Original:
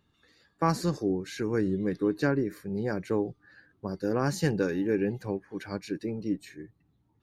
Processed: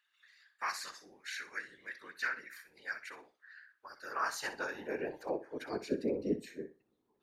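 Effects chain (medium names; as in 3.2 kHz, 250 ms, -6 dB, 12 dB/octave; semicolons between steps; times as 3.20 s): high-pass sweep 1.8 kHz -> 380 Hz, 3.67–5.84 s; whisper effect; flutter echo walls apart 10.6 m, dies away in 0.28 s; trim -4.5 dB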